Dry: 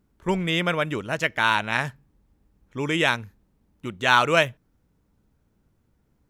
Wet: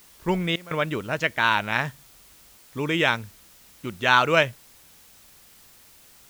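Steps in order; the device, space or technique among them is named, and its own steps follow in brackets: worn cassette (low-pass 6.1 kHz; wow and flutter; level dips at 0.56/2.57 s, 149 ms -19 dB; white noise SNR 26 dB)

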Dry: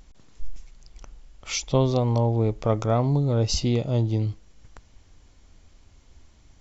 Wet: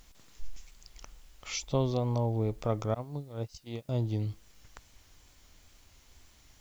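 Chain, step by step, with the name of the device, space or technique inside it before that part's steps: 2.94–3.89 s: gate -19 dBFS, range -30 dB; noise-reduction cassette on a plain deck (tape noise reduction on one side only encoder only; wow and flutter; white noise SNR 35 dB); trim -7.5 dB

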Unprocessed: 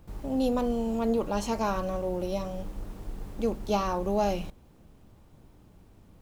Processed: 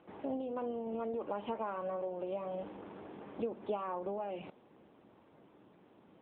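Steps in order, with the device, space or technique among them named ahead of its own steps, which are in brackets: voicemail (band-pass 310–3000 Hz; compression 12:1, threshold -35 dBFS, peak gain reduction 13.5 dB; trim +2.5 dB; AMR-NB 7.95 kbps 8 kHz)

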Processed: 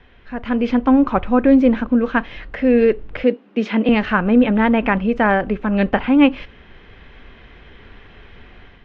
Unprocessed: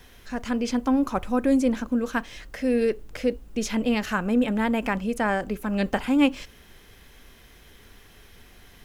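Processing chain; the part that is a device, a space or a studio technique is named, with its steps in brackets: 3.23–3.89 s: Chebyshev high-pass 190 Hz, order 5; action camera in a waterproof case (low-pass 3 kHz 24 dB/octave; level rider gain up to 7.5 dB; trim +1.5 dB; AAC 64 kbps 32 kHz)

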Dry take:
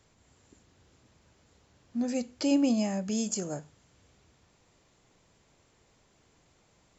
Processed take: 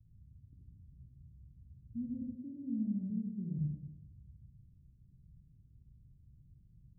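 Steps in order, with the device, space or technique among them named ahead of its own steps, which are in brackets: club heard from the street (peak limiter -22 dBFS, peak gain reduction 5.5 dB; low-pass 150 Hz 24 dB/octave; reverberation RT60 1.0 s, pre-delay 56 ms, DRR -2.5 dB); 2.35–3.59 s: Bessel high-pass 160 Hz, order 8; trim +7.5 dB

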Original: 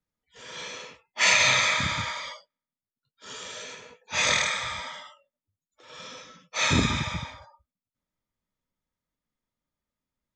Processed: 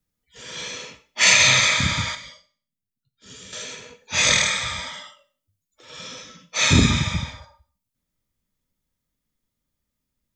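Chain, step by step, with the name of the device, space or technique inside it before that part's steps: 2.15–3.53 s: FFT filter 190 Hz 0 dB, 910 Hz -15 dB, 1.9 kHz -9 dB; smiley-face EQ (bass shelf 140 Hz +4.5 dB; peaking EQ 930 Hz -6 dB 1.9 oct; treble shelf 8 kHz +6 dB); Schroeder reverb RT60 0.43 s, combs from 31 ms, DRR 12.5 dB; trim +6 dB

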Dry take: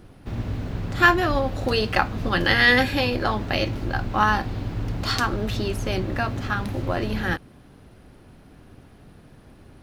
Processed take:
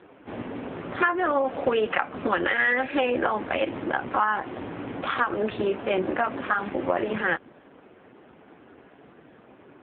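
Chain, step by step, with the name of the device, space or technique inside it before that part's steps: voicemail (band-pass 330–2600 Hz; compression 10:1, threshold -25 dBFS, peak gain reduction 14 dB; trim +7.5 dB; AMR-NB 5.15 kbps 8 kHz)

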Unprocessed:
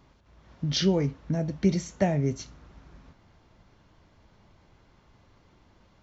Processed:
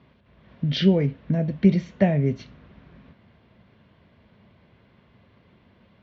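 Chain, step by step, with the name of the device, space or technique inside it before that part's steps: guitar cabinet (cabinet simulation 90–3500 Hz, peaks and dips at 220 Hz +5 dB, 310 Hz -6 dB, 840 Hz -8 dB, 1.3 kHz -6 dB); 0.64–1.21 s: band-stop 1.1 kHz, Q 6.4; trim +5 dB

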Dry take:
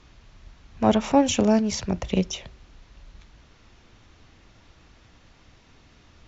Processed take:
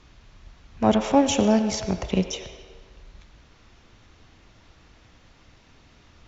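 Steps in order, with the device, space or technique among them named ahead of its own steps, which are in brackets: filtered reverb send (on a send: high-pass 330 Hz 24 dB/octave + low-pass 5.7 kHz + reverberation RT60 1.6 s, pre-delay 77 ms, DRR 8 dB)

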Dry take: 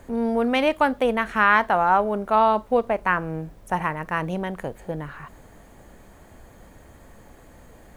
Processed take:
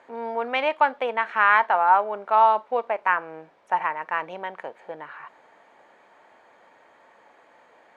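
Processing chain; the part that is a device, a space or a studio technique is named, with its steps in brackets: tin-can telephone (band-pass 620–3100 Hz; small resonant body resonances 910/2300 Hz, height 6 dB)

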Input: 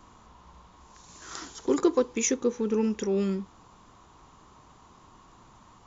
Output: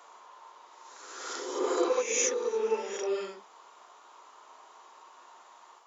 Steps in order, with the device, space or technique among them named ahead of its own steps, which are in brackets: ghost voice (reverse; reverberation RT60 1.1 s, pre-delay 25 ms, DRR -5.5 dB; reverse; high-pass 470 Hz 24 dB/octave); trim -3.5 dB

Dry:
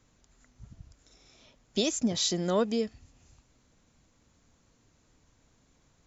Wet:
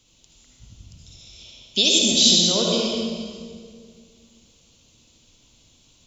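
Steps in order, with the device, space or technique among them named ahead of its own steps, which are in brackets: resonant high shelf 2.3 kHz +9 dB, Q 3; stairwell (reverberation RT60 1.9 s, pre-delay 55 ms, DRR -2.5 dB)

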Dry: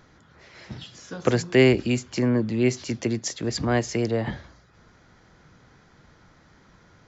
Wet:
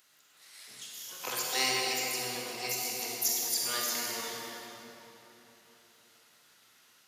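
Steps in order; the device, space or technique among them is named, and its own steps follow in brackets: shimmer-style reverb (harmony voices +12 st -5 dB; reverberation RT60 3.7 s, pre-delay 35 ms, DRR -4 dB); differentiator

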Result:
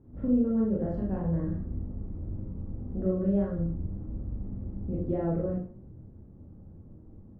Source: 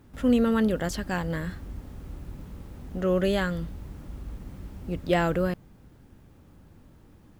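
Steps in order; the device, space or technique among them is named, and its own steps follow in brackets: television next door (compression 4:1, threshold -27 dBFS, peak gain reduction 9 dB; low-pass 490 Hz 12 dB/octave; reverberation RT60 0.50 s, pre-delay 25 ms, DRR -4 dB); trim -2 dB

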